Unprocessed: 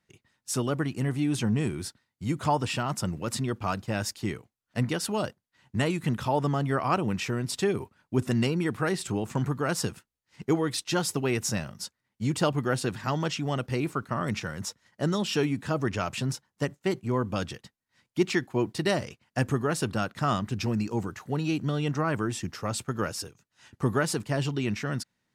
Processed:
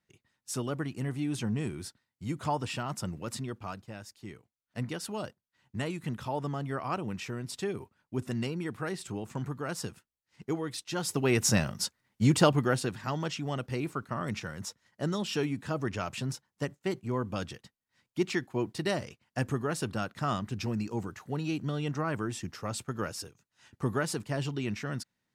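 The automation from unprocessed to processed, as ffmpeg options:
ffmpeg -i in.wav -af "volume=16.5dB,afade=type=out:start_time=3.22:duration=0.85:silence=0.266073,afade=type=in:start_time=4.07:duration=0.76:silence=0.334965,afade=type=in:start_time=10.95:duration=0.65:silence=0.237137,afade=type=out:start_time=12.22:duration=0.71:silence=0.334965" out.wav

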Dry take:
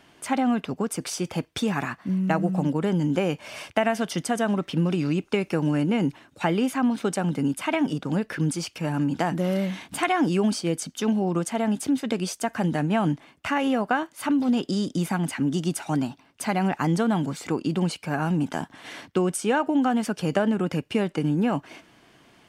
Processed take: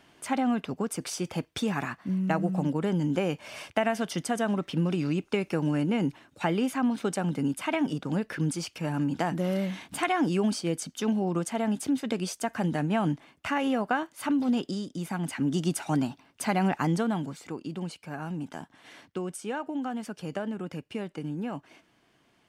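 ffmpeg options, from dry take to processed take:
ffmpeg -i in.wav -af "volume=6dB,afade=type=out:start_time=14.57:duration=0.32:silence=0.421697,afade=type=in:start_time=14.89:duration=0.73:silence=0.334965,afade=type=out:start_time=16.7:duration=0.74:silence=0.354813" out.wav

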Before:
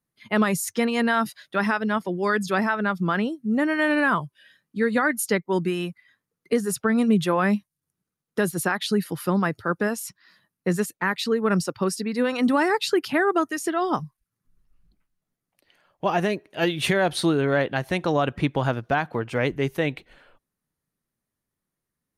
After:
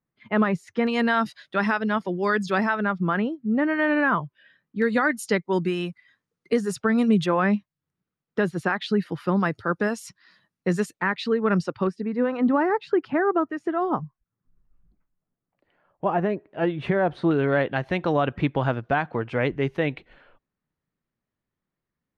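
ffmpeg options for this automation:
ffmpeg -i in.wav -af "asetnsamples=nb_out_samples=441:pad=0,asendcmd='0.87 lowpass f 5400;2.85 lowpass f 2400;4.82 lowpass f 6400;7.26 lowpass f 3200;9.4 lowpass f 6200;11.02 lowpass f 3400;11.87 lowpass f 1400;17.31 lowpass f 3100',lowpass=2100" out.wav

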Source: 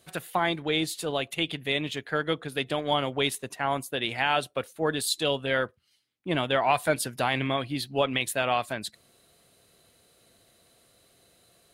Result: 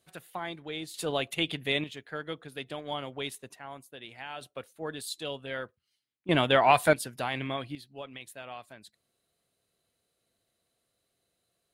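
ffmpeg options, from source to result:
ffmpeg -i in.wav -af "asetnsamples=nb_out_samples=441:pad=0,asendcmd='0.94 volume volume -1dB;1.84 volume volume -9.5dB;3.59 volume volume -16dB;4.41 volume volume -10dB;6.29 volume volume 2.5dB;6.93 volume volume -6dB;7.75 volume volume -17dB',volume=-11dB" out.wav

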